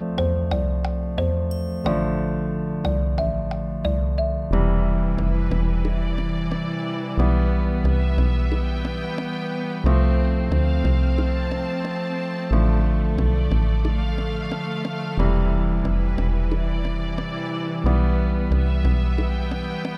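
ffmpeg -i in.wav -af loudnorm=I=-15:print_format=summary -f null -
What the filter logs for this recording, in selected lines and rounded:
Input Integrated:    -22.8 LUFS
Input True Peak:      -4.4 dBTP
Input LRA:             1.8 LU
Input Threshold:     -32.8 LUFS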